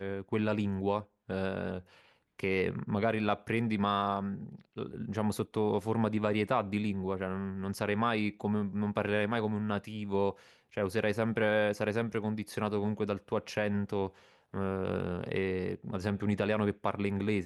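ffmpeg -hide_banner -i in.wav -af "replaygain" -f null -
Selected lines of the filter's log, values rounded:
track_gain = +13.7 dB
track_peak = 0.140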